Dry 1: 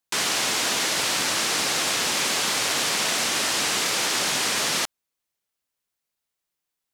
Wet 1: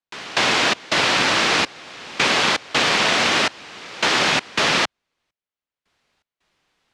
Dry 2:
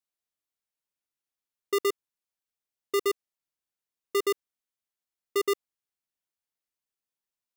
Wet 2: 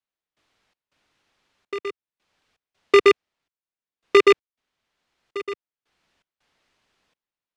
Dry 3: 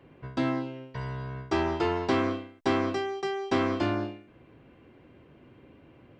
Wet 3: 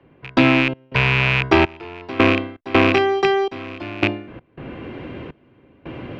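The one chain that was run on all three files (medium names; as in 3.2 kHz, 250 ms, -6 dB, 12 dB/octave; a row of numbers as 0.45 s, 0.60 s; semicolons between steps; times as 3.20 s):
rattle on loud lows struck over -37 dBFS, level -19 dBFS; low-pass 3.6 kHz 12 dB/octave; trance gate "..xx.xxxx." 82 bpm -24 dB; three bands compressed up and down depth 40%; normalise loudness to -18 LUFS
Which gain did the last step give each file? +9.0 dB, +15.5 dB, +14.0 dB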